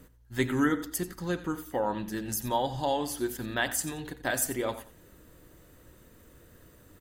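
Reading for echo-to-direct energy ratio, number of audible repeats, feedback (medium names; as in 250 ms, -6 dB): -15.0 dB, 2, 22%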